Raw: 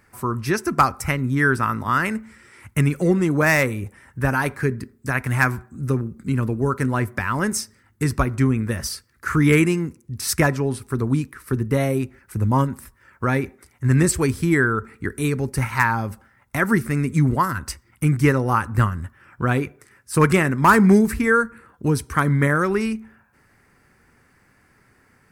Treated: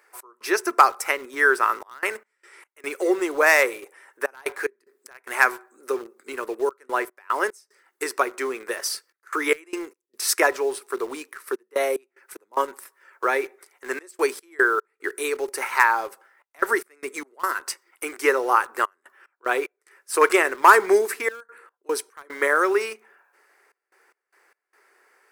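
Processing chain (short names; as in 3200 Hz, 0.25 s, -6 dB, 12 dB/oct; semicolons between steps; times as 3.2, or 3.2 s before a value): elliptic high-pass 380 Hz, stop band 60 dB; step gate "x.xxxxxxx.x." 74 bpm -24 dB; in parallel at -11 dB: bit-crush 6-bit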